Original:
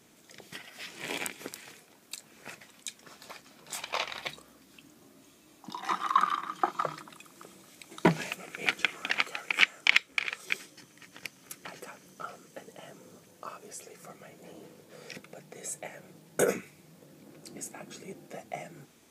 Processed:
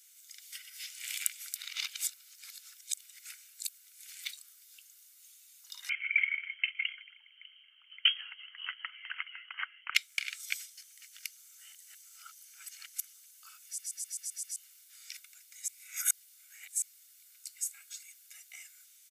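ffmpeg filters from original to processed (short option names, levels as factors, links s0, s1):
-filter_complex "[0:a]asettb=1/sr,asplit=3[s0][s1][s2];[s0]atrim=end=5.894[s3];[s1]atrim=start=5.89:end=9.95,asetpts=PTS-STARTPTS,afade=t=in:d=0.004:c=qsin,afade=t=out:st=4.056:d=0.004:c=qsin,lowpass=f=2900:t=q:w=0.5098,lowpass=f=2900:t=q:w=0.6013,lowpass=f=2900:t=q:w=0.9,lowpass=f=2900:t=q:w=2.563,afreqshift=-3400[s4];[s2]atrim=start=9.946[s5];[s3][s4]acrossfade=d=0.004:c1=hsin:c2=qsin[s6];[s6][s5]acrossfade=d=0.004:c1=qsin:c2=hsin,asplit=14[s7][s8][s9][s10][s11][s12][s13][s14][s15][s16][s17][s18][s19][s20];[s7]atrim=end=1.562[s21];[s8]atrim=start=1.558:end=4.242,asetpts=PTS-STARTPTS,areverse[s22];[s9]atrim=start=4.238:end=11.372[s23];[s10]atrim=start=11.368:end=13.142,asetpts=PTS-STARTPTS,areverse[s24];[s11]atrim=start=13.138:end=13.782[s25];[s12]atrim=start=13.648:end=13.782[s26];[s13]atrim=start=13.648:end=13.782[s27];[s14]atrim=start=13.648:end=13.782[s28];[s15]atrim=start=13.648:end=13.782[s29];[s16]atrim=start=13.648:end=13.782[s30];[s17]atrim=start=13.648:end=13.782[s31];[s18]atrim=start=14.558:end=15.682[s32];[s19]atrim=start=15.678:end=16.822,asetpts=PTS-STARTPTS,areverse[s33];[s20]atrim=start=16.818[s34];[s21][s22]acrossfade=d=0.004:c1=hsin:c2=hsin[s35];[s35][s23]acrossfade=d=0.004:c1=hsin:c2=hsin[s36];[s36][s24]acrossfade=d=0.004:c1=hsin:c2=hsin[s37];[s37][s25]acrossfade=d=0.004:c1=hsin:c2=hsin[s38];[s38][s26]acrossfade=d=0.004:c1=hsin:c2=hsin[s39];[s39][s27]acrossfade=d=0.004:c1=hsin:c2=hsin[s40];[s40][s28]acrossfade=d=0.004:c1=hsin:c2=hsin[s41];[s41][s29]acrossfade=d=0.004:c1=hsin:c2=hsin[s42];[s42][s30]acrossfade=d=0.004:c1=hsin:c2=hsin[s43];[s43][s31]acrossfade=d=0.004:c1=hsin:c2=hsin[s44];[s44][s32]acrossfade=d=0.004:c1=hsin:c2=hsin[s45];[s45][s33]acrossfade=d=0.004:c1=hsin:c2=hsin[s46];[s46][s34]acrossfade=d=0.004:c1=hsin:c2=hsin,highpass=f=1500:w=0.5412,highpass=f=1500:w=1.3066,aderivative,aecho=1:1:1.4:0.42,volume=1.68"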